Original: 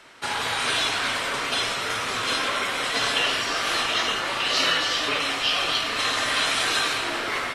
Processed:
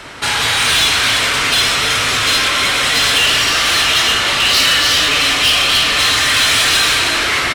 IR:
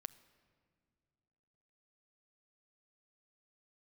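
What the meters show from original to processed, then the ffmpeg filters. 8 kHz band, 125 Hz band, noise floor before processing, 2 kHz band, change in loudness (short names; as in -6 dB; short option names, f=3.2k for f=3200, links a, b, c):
+14.5 dB, +14.5 dB, -29 dBFS, +11.0 dB, +12.0 dB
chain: -filter_complex "[0:a]aecho=1:1:316:0.355,asplit=2[a][b];[1:a]atrim=start_sample=2205[c];[b][c]afir=irnorm=-1:irlink=0,volume=17dB[d];[a][d]amix=inputs=2:normalize=0,asoftclip=type=tanh:threshold=-9.5dB,equalizer=f=61:t=o:w=2.4:g=13.5,acrossover=split=1600[e][f];[e]alimiter=limit=-19.5dB:level=0:latency=1[g];[g][f]amix=inputs=2:normalize=0,volume=2dB"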